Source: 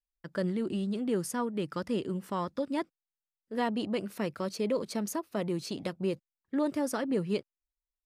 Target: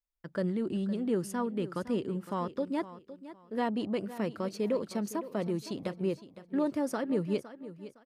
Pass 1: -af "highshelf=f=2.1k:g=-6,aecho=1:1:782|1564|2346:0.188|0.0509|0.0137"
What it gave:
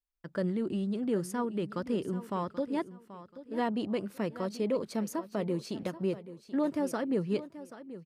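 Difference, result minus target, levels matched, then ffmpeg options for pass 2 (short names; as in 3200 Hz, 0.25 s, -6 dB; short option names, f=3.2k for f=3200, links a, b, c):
echo 0.271 s late
-af "highshelf=f=2.1k:g=-6,aecho=1:1:511|1022|1533:0.188|0.0509|0.0137"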